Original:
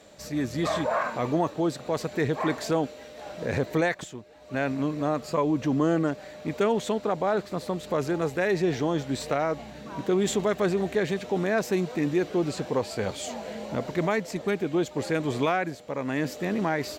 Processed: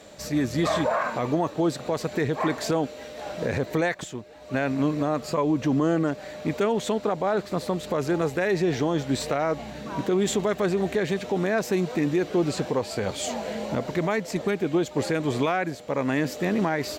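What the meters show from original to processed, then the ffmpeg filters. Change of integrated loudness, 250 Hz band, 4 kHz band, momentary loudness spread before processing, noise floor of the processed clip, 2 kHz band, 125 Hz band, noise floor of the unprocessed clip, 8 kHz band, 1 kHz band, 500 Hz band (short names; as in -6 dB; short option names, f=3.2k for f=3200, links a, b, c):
+1.5 dB, +2.0 dB, +2.5 dB, 8 LU, -42 dBFS, +1.0 dB, +2.0 dB, -45 dBFS, +3.0 dB, +1.0 dB, +1.5 dB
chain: -af "alimiter=limit=-20dB:level=0:latency=1:release=251,volume=5dB"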